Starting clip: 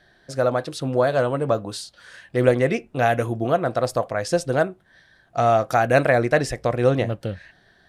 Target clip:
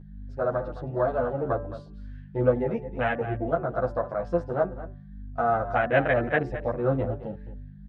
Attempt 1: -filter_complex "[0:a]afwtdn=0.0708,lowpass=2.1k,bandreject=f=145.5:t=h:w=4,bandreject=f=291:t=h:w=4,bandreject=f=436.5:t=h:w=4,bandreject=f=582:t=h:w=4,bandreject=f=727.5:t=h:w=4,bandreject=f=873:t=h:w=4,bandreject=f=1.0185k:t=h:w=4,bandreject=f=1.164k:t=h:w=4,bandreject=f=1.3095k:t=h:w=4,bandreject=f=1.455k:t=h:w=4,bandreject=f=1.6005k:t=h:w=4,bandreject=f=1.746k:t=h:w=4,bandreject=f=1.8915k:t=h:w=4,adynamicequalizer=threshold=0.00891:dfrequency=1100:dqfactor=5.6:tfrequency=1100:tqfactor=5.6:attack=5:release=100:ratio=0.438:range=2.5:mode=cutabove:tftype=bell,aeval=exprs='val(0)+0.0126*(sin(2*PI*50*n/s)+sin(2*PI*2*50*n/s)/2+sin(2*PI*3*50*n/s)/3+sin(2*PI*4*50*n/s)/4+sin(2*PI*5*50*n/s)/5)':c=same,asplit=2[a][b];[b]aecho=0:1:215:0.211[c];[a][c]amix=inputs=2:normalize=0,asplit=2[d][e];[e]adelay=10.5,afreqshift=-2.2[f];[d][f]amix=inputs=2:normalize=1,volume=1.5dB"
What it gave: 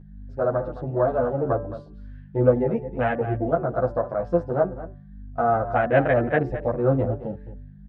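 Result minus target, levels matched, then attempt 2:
2000 Hz band -4.0 dB
-filter_complex "[0:a]afwtdn=0.0708,lowpass=2.1k,tiltshelf=f=1.5k:g=-5,bandreject=f=145.5:t=h:w=4,bandreject=f=291:t=h:w=4,bandreject=f=436.5:t=h:w=4,bandreject=f=582:t=h:w=4,bandreject=f=727.5:t=h:w=4,bandreject=f=873:t=h:w=4,bandreject=f=1.0185k:t=h:w=4,bandreject=f=1.164k:t=h:w=4,bandreject=f=1.3095k:t=h:w=4,bandreject=f=1.455k:t=h:w=4,bandreject=f=1.6005k:t=h:w=4,bandreject=f=1.746k:t=h:w=4,bandreject=f=1.8915k:t=h:w=4,adynamicequalizer=threshold=0.00891:dfrequency=1100:dqfactor=5.6:tfrequency=1100:tqfactor=5.6:attack=5:release=100:ratio=0.438:range=2.5:mode=cutabove:tftype=bell,aeval=exprs='val(0)+0.0126*(sin(2*PI*50*n/s)+sin(2*PI*2*50*n/s)/2+sin(2*PI*3*50*n/s)/3+sin(2*PI*4*50*n/s)/4+sin(2*PI*5*50*n/s)/5)':c=same,asplit=2[a][b];[b]aecho=0:1:215:0.211[c];[a][c]amix=inputs=2:normalize=0,asplit=2[d][e];[e]adelay=10.5,afreqshift=-2.2[f];[d][f]amix=inputs=2:normalize=1,volume=1.5dB"

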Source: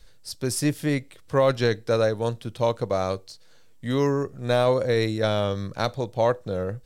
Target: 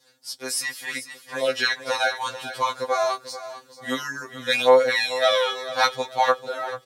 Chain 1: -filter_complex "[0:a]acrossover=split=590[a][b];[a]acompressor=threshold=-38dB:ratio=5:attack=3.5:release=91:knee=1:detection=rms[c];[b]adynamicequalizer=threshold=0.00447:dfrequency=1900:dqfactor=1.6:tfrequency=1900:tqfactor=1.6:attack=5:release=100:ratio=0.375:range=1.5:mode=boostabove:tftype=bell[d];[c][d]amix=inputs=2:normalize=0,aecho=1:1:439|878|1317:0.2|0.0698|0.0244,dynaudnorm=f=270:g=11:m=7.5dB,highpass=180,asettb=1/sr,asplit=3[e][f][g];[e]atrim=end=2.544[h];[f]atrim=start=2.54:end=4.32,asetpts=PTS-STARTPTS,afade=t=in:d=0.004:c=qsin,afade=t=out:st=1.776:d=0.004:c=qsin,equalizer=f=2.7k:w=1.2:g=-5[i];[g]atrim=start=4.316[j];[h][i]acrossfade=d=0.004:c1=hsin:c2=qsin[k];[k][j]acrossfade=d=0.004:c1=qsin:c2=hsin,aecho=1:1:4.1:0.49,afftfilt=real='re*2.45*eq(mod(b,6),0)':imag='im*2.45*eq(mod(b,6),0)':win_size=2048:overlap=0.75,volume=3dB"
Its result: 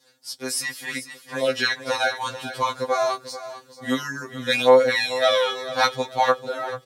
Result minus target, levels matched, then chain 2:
compressor: peak gain reduction -7.5 dB
-filter_complex "[0:a]acrossover=split=590[a][b];[a]acompressor=threshold=-47.5dB:ratio=5:attack=3.5:release=91:knee=1:detection=rms[c];[b]adynamicequalizer=threshold=0.00447:dfrequency=1900:dqfactor=1.6:tfrequency=1900:tqfactor=1.6:attack=5:release=100:ratio=0.375:range=1.5:mode=boostabove:tftype=bell[d];[c][d]amix=inputs=2:normalize=0,aecho=1:1:439|878|1317:0.2|0.0698|0.0244,dynaudnorm=f=270:g=11:m=7.5dB,highpass=180,asettb=1/sr,asplit=3[e][f][g];[e]atrim=end=2.544[h];[f]atrim=start=2.54:end=4.32,asetpts=PTS-STARTPTS,afade=t=in:d=0.004:c=qsin,afade=t=out:st=1.776:d=0.004:c=qsin,equalizer=f=2.7k:w=1.2:g=-5[i];[g]atrim=start=4.316[j];[h][i]acrossfade=d=0.004:c1=hsin:c2=qsin[k];[k][j]acrossfade=d=0.004:c1=qsin:c2=hsin,aecho=1:1:4.1:0.49,afftfilt=real='re*2.45*eq(mod(b,6),0)':imag='im*2.45*eq(mod(b,6),0)':win_size=2048:overlap=0.75,volume=3dB"

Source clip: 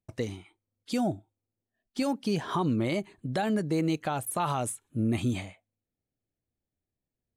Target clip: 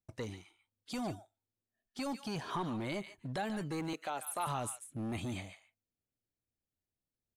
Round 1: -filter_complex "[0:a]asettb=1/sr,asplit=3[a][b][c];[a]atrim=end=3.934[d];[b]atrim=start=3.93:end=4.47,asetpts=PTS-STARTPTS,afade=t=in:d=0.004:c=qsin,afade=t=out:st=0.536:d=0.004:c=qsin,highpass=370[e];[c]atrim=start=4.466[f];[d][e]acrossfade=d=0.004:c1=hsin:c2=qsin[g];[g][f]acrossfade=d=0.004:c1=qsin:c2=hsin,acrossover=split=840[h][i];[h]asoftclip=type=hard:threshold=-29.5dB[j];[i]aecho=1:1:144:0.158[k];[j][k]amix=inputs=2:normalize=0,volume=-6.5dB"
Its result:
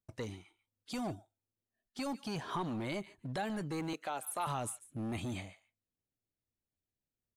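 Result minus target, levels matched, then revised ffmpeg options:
echo-to-direct -7 dB
-filter_complex "[0:a]asettb=1/sr,asplit=3[a][b][c];[a]atrim=end=3.934[d];[b]atrim=start=3.93:end=4.47,asetpts=PTS-STARTPTS,afade=t=in:d=0.004:c=qsin,afade=t=out:st=0.536:d=0.004:c=qsin,highpass=370[e];[c]atrim=start=4.466[f];[d][e]acrossfade=d=0.004:c1=hsin:c2=qsin[g];[g][f]acrossfade=d=0.004:c1=qsin:c2=hsin,acrossover=split=840[h][i];[h]asoftclip=type=hard:threshold=-29.5dB[j];[i]aecho=1:1:144:0.355[k];[j][k]amix=inputs=2:normalize=0,volume=-6.5dB"

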